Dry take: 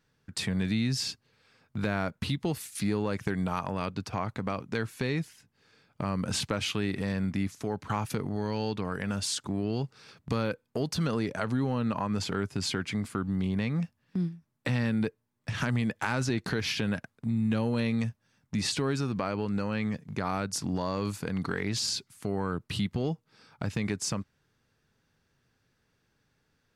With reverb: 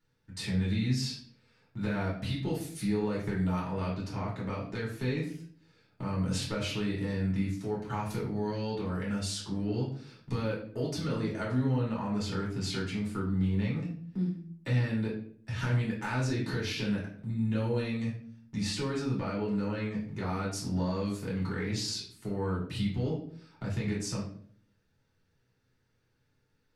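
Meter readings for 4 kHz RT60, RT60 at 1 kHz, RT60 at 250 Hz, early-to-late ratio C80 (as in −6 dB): 0.40 s, 0.45 s, 0.75 s, 9.5 dB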